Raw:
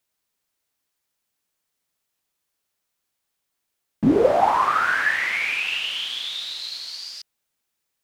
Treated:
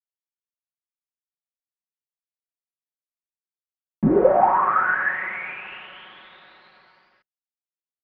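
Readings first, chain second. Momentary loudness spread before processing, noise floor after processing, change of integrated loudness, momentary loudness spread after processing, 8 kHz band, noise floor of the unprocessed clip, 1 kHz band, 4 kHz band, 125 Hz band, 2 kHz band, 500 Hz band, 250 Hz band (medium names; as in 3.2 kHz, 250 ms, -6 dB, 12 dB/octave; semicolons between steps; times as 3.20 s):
14 LU, under -85 dBFS, +1.5 dB, 18 LU, under -35 dB, -79 dBFS, +1.0 dB, under -20 dB, +2.5 dB, -2.5 dB, +1.0 dB, -1.0 dB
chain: low-pass 1.7 kHz 24 dB/octave; expander -53 dBFS; comb 5.4 ms, depth 60%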